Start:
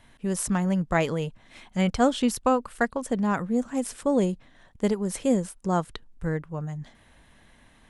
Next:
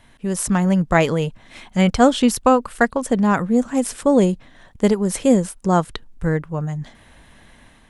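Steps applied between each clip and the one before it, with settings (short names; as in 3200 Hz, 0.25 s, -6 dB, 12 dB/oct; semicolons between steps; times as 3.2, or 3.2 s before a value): AGC gain up to 4 dB; gain +4 dB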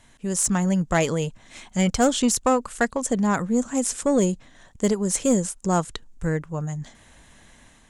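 bell 7000 Hz +12.5 dB 0.7 oct; soft clip -6.5 dBFS, distortion -19 dB; gain -4 dB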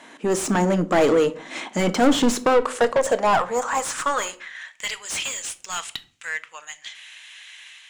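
high-pass sweep 280 Hz -> 2700 Hz, 2.22–4.98; overdrive pedal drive 28 dB, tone 1700 Hz, clips at -3.5 dBFS; shoebox room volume 390 m³, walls furnished, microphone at 0.54 m; gain -5.5 dB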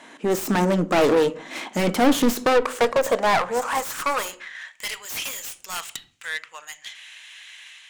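self-modulated delay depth 0.21 ms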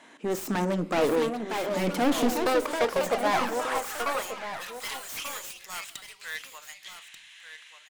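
echo 1.187 s -10.5 dB; echoes that change speed 0.778 s, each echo +4 st, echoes 2, each echo -6 dB; gain -7 dB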